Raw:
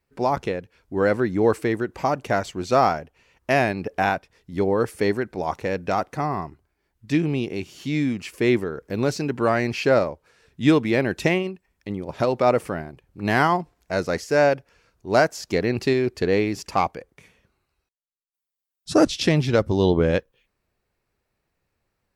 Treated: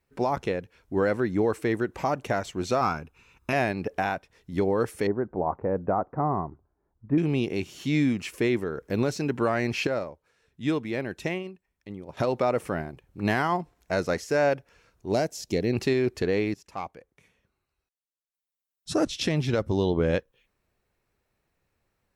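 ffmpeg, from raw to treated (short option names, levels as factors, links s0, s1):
-filter_complex "[0:a]asettb=1/sr,asplit=3[s0][s1][s2];[s0]atrim=end=2.814[s3];[s1]atrim=start=2.81:end=3.53,asetpts=PTS-STARTPTS,afade=t=in:d=0.004:c=qsin,afade=t=out:st=0.716:d=0.004:c=qsin,aecho=1:1:0.8:0.65,atrim=end_sample=31752[s4];[s2]atrim=start=3.526[s5];[s3][s4]acrossfade=d=0.004:c1=hsin:c2=qsin[s6];[s6][s5]acrossfade=d=0.004:c1=qsin:c2=hsin,asettb=1/sr,asplit=3[s7][s8][s9];[s7]atrim=end=5.074[s10];[s8]atrim=start=5.07:end=7.18,asetpts=PTS-STARTPTS,afade=t=in:d=0.004:c=qsin,afade=t=out:st=2.106:d=0.004:c=qsin,lowpass=f=1200:w=0.5412,lowpass=f=1200:w=1.3066[s11];[s9]atrim=start=7.176[s12];[s10][s11]acrossfade=d=0.004:c1=hsin:c2=qsin[s13];[s13][s12]acrossfade=d=0.004:c1=qsin:c2=hsin,asettb=1/sr,asplit=3[s14][s15][s16];[s14]atrim=end=15.124[s17];[s15]atrim=start=15.12:end=15.73,asetpts=PTS-STARTPTS,afade=t=in:d=0.004:c=qsin,afade=t=out:st=0.606:d=0.004:c=qsin,equalizer=f=1300:t=o:w=1.4:g=-14[s18];[s16]atrim=start=15.726[s19];[s17][s18]acrossfade=d=0.004:c1=hsin:c2=qsin[s20];[s20][s19]acrossfade=d=0.004:c1=qsin:c2=hsin,asplit=4[s21][s22][s23][s24];[s21]atrim=end=9.872[s25];[s22]atrim=start=9.868:end=12.172,asetpts=PTS-STARTPTS,volume=0.335[s26];[s23]atrim=start=12.168:end=16.54,asetpts=PTS-STARTPTS,afade=t=out:st=4.368:d=0.004:c=hsin:silence=0.141254[s27];[s24]atrim=start=16.54,asetpts=PTS-STARTPTS,afade=t=in:d=3.17:silence=0.141254[s28];[s25][s26]acrossfade=d=0.004:c1=hsin:c2=hsin[s29];[s27][s28]concat=n=2:v=0:a=1[s30];[s29][s30]acrossfade=d=0.004:c1=hsin:c2=hsin,bandreject=f=4700:w=15,alimiter=limit=0.188:level=0:latency=1:release=323"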